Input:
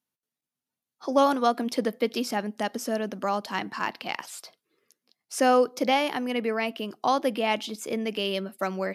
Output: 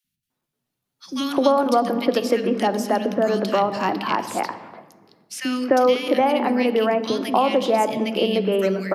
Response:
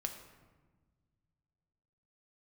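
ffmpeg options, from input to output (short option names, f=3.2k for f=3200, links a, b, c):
-filter_complex "[0:a]acrossover=split=220|2000[a][b][c];[a]adelay=40[d];[b]adelay=300[e];[d][e][c]amix=inputs=3:normalize=0,asplit=2[f][g];[1:a]atrim=start_sample=2205,lowpass=4.5k,lowshelf=f=380:g=9[h];[g][h]afir=irnorm=-1:irlink=0,volume=-1dB[i];[f][i]amix=inputs=2:normalize=0,acrossover=split=220|1100|3200[j][k][l][m];[j]acompressor=threshold=-43dB:ratio=4[n];[k]acompressor=threshold=-23dB:ratio=4[o];[l]acompressor=threshold=-39dB:ratio=4[p];[m]acompressor=threshold=-40dB:ratio=4[q];[n][o][p][q]amix=inputs=4:normalize=0,volume=6.5dB"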